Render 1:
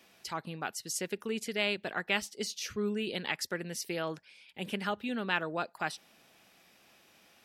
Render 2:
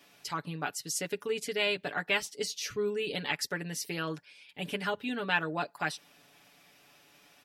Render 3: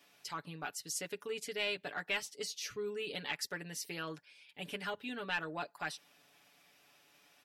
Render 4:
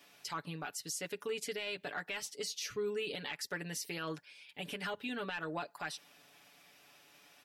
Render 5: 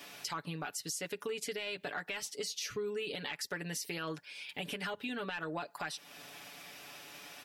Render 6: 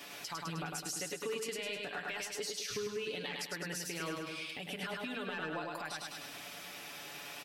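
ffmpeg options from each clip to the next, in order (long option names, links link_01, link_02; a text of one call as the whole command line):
ffmpeg -i in.wav -af "aecho=1:1:6.9:0.76" out.wav
ffmpeg -i in.wav -filter_complex "[0:a]lowshelf=frequency=330:gain=-5,acrossover=split=2500[link_01][link_02];[link_01]asoftclip=type=tanh:threshold=-24.5dB[link_03];[link_03][link_02]amix=inputs=2:normalize=0,volume=-5dB" out.wav
ffmpeg -i in.wav -af "alimiter=level_in=9.5dB:limit=-24dB:level=0:latency=1:release=104,volume=-9.5dB,volume=4dB" out.wav
ffmpeg -i in.wav -af "acompressor=threshold=-53dB:ratio=2.5,volume=11.5dB" out.wav
ffmpeg -i in.wav -filter_complex "[0:a]asplit=2[link_01][link_02];[link_02]aecho=0:1:103|206|309|412|515|618|721:0.668|0.354|0.188|0.0995|0.0527|0.0279|0.0148[link_03];[link_01][link_03]amix=inputs=2:normalize=0,alimiter=level_in=7dB:limit=-24dB:level=0:latency=1:release=229,volume=-7dB,volume=1.5dB" out.wav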